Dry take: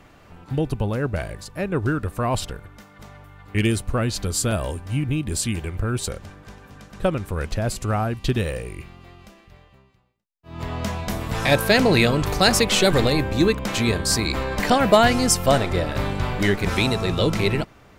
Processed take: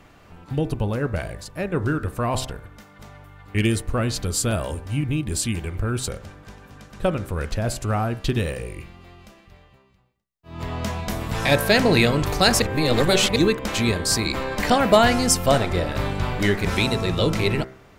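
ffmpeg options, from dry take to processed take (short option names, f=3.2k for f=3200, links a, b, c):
-filter_complex "[0:a]asplit=3[a][b][c];[a]atrim=end=12.622[d];[b]atrim=start=12.618:end=13.362,asetpts=PTS-STARTPTS,areverse[e];[c]atrim=start=13.358[f];[d][e]acrossfade=d=0.004:c1=hsin:c2=hsin[g];[g][f]acrossfade=d=0.004:c1=hsin:c2=hsin,bandreject=f=64.72:t=h:w=4,bandreject=f=129.44:t=h:w=4,bandreject=f=194.16:t=h:w=4,bandreject=f=258.88:t=h:w=4,bandreject=f=323.6:t=h:w=4,bandreject=f=388.32:t=h:w=4,bandreject=f=453.04:t=h:w=4,bandreject=f=517.76:t=h:w=4,bandreject=f=582.48:t=h:w=4,bandreject=f=647.2:t=h:w=4,bandreject=f=711.92:t=h:w=4,bandreject=f=776.64:t=h:w=4,bandreject=f=841.36:t=h:w=4,bandreject=f=906.08:t=h:w=4,bandreject=f=970.8:t=h:w=4,bandreject=f=1.03552k:t=h:w=4,bandreject=f=1.10024k:t=h:w=4,bandreject=f=1.16496k:t=h:w=4,bandreject=f=1.22968k:t=h:w=4,bandreject=f=1.2944k:t=h:w=4,bandreject=f=1.35912k:t=h:w=4,bandreject=f=1.42384k:t=h:w=4,bandreject=f=1.48856k:t=h:w=4,bandreject=f=1.55328k:t=h:w=4,bandreject=f=1.618k:t=h:w=4,bandreject=f=1.68272k:t=h:w=4,bandreject=f=1.74744k:t=h:w=4,bandreject=f=1.81216k:t=h:w=4,bandreject=f=1.87688k:t=h:w=4,bandreject=f=1.9416k:t=h:w=4,bandreject=f=2.00632k:t=h:w=4,bandreject=f=2.07104k:t=h:w=4,bandreject=f=2.13576k:t=h:w=4,bandreject=f=2.20048k:t=h:w=4"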